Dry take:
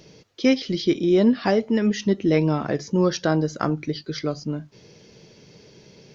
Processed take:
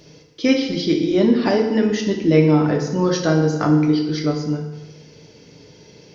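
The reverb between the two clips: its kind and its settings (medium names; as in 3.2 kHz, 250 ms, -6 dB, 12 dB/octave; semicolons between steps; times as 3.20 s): FDN reverb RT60 1.1 s, low-frequency decay 1.05×, high-frequency decay 0.8×, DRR 1 dB; trim +1 dB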